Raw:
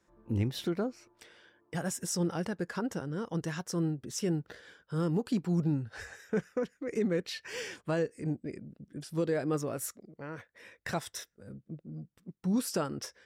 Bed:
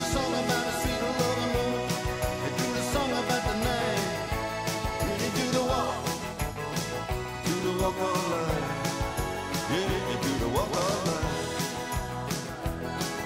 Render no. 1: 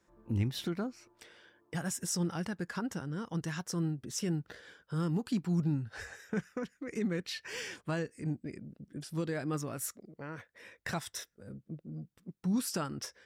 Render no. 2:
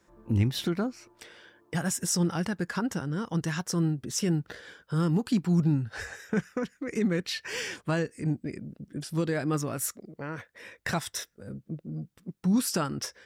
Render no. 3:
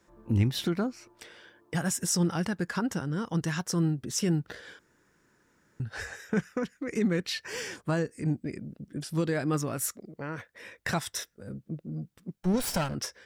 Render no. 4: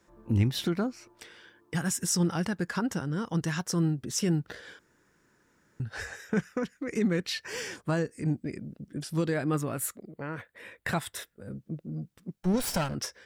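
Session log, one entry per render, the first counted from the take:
dynamic equaliser 490 Hz, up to −8 dB, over −46 dBFS, Q 1.2
level +6.5 dB
0:04.79–0:05.80: fill with room tone; 0:07.39–0:08.18: parametric band 2,800 Hz −5.5 dB 1.3 octaves; 0:12.36–0:12.95: lower of the sound and its delayed copy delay 1.3 ms
0:01.24–0:02.20: parametric band 620 Hz −7 dB 0.58 octaves; 0:09.34–0:11.52: parametric band 5,700 Hz −12 dB 0.44 octaves

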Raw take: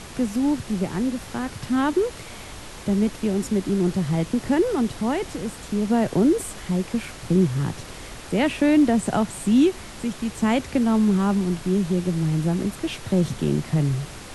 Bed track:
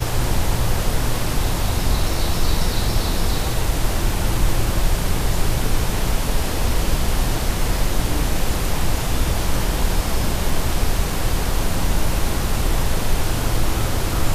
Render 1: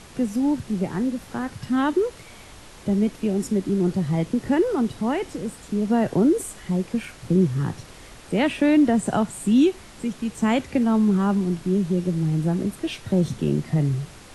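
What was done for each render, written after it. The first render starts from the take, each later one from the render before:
noise reduction from a noise print 6 dB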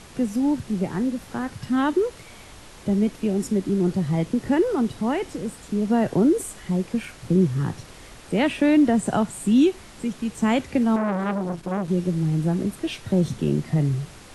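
0:10.96–0:11.88: saturating transformer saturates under 890 Hz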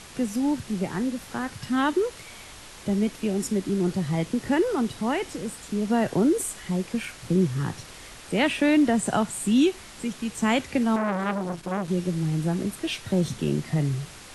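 tilt shelving filter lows −3.5 dB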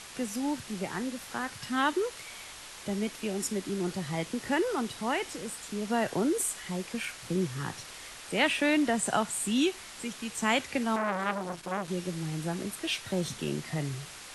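low-shelf EQ 450 Hz −10.5 dB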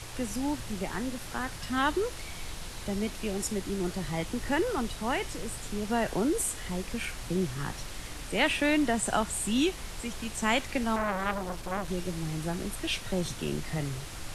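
mix in bed track −22.5 dB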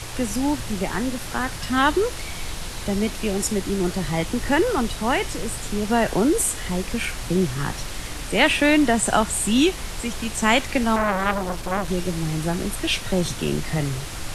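level +8.5 dB

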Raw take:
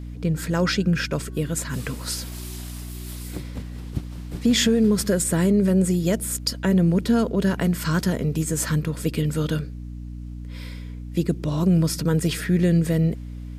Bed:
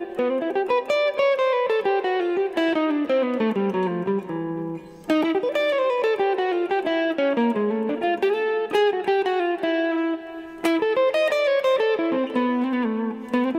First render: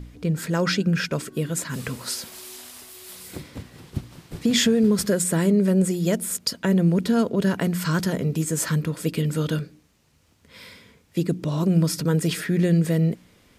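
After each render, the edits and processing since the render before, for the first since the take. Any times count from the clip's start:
hum removal 60 Hz, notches 5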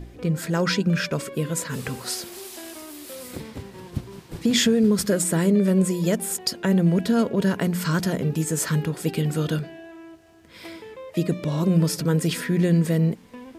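mix in bed −19.5 dB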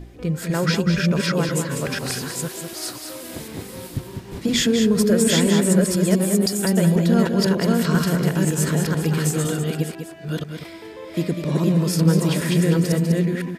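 delay that plays each chunk backwards 497 ms, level −1 dB
single-tap delay 199 ms −7 dB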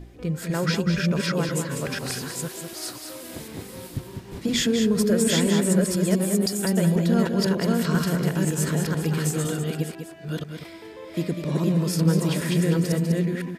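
level −3.5 dB

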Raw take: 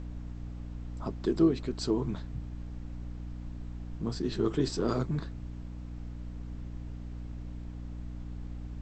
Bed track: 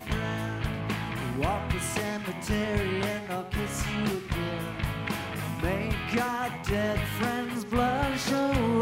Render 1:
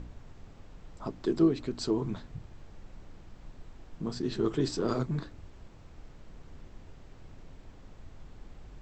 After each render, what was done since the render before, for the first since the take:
hum removal 60 Hz, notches 5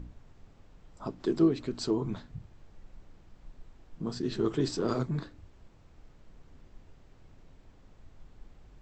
noise reduction from a noise print 6 dB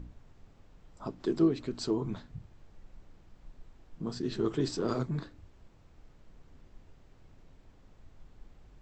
level −1.5 dB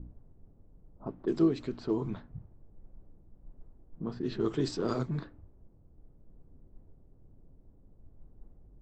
low-pass that shuts in the quiet parts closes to 380 Hz, open at −26 dBFS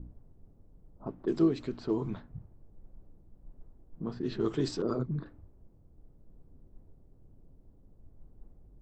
0:04.82–0:05.26: spectral envelope exaggerated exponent 1.5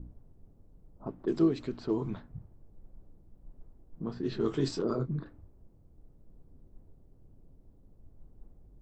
0:04.13–0:05.18: double-tracking delay 22 ms −9 dB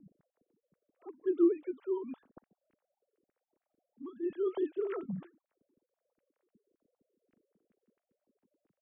three sine waves on the formant tracks
rotating-speaker cabinet horn 7 Hz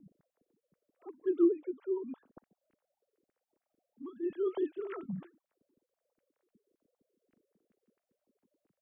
0:01.45–0:02.26: spectral envelope exaggerated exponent 1.5
0:04.68–0:05.19: parametric band 480 Hz −7.5 dB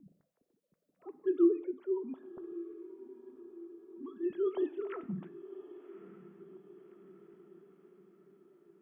feedback delay with all-pass diffusion 1,148 ms, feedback 55%, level −15 dB
reverb whose tail is shaped and stops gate 230 ms falling, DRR 11.5 dB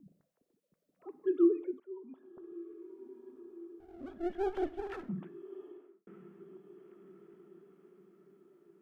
0:01.80–0:03.09: fade in, from −15 dB
0:03.80–0:05.09: lower of the sound and its delayed copy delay 0.57 ms
0:05.64–0:06.07: fade out and dull

